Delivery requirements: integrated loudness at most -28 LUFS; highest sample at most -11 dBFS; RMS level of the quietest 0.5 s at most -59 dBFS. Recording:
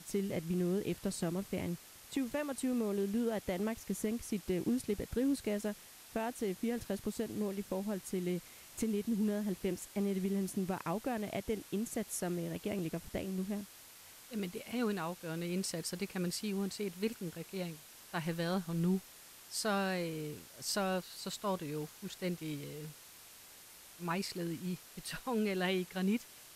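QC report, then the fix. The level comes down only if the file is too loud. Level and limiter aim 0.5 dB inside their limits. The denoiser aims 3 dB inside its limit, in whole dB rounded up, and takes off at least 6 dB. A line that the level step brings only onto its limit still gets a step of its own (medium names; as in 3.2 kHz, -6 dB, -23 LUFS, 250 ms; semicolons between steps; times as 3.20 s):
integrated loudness -37.5 LUFS: pass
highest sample -23.0 dBFS: pass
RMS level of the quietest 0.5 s -56 dBFS: fail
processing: noise reduction 6 dB, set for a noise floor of -56 dBFS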